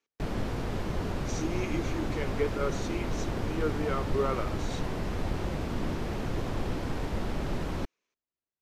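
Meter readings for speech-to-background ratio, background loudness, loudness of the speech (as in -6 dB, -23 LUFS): -1.0 dB, -34.0 LUFS, -35.0 LUFS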